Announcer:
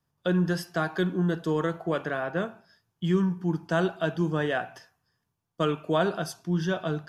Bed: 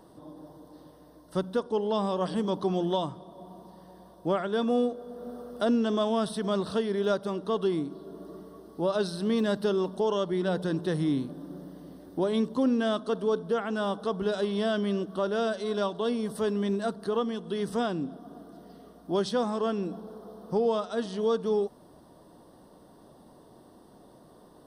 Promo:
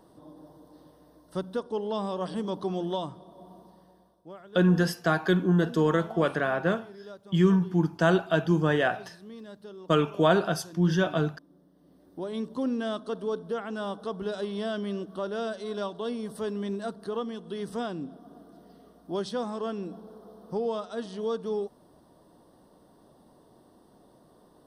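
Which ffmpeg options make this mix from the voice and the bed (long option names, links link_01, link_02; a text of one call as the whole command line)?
ffmpeg -i stem1.wav -i stem2.wav -filter_complex "[0:a]adelay=4300,volume=3dB[link_01];[1:a]volume=11dB,afade=type=out:start_time=3.54:duration=0.71:silence=0.177828,afade=type=in:start_time=11.73:duration=0.92:silence=0.199526[link_02];[link_01][link_02]amix=inputs=2:normalize=0" out.wav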